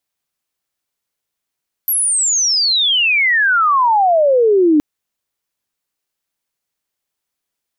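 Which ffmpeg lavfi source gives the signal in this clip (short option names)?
-f lavfi -i "aevalsrc='pow(10,(-13+5*t/2.92)/20)*sin(2*PI*12000*2.92/log(290/12000)*(exp(log(290/12000)*t/2.92)-1))':d=2.92:s=44100"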